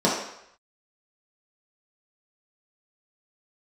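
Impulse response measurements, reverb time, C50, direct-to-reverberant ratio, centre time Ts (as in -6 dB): 0.75 s, 2.5 dB, -6.5 dB, 49 ms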